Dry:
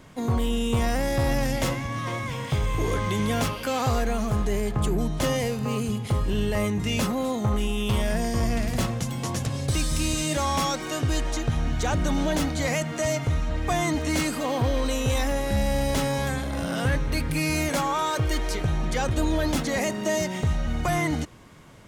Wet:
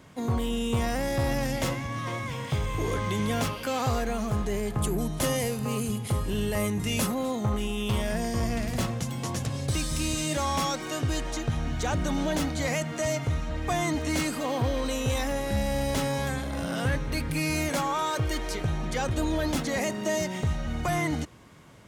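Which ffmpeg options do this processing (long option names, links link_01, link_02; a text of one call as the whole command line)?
ffmpeg -i in.wav -filter_complex "[0:a]asettb=1/sr,asplit=3[link_01][link_02][link_03];[link_01]atrim=end=4.704[link_04];[link_02]atrim=start=4.7:end=7.14,asetpts=PTS-STARTPTS,afade=type=in:duration=0.004:curve=qsin,afade=type=out:start_time=2.436:duration=0.004:curve=qsin,equalizer=frequency=11000:width_type=o:width=0.88:gain=10[link_05];[link_03]atrim=start=7.136[link_06];[link_04][link_05]acrossfade=duration=0.004:curve1=hsin:curve2=qsin[link_07];[link_07][link_06]acrossfade=duration=0.004:curve1=qsin:curve2=hsin,highpass=48,volume=-2.5dB" out.wav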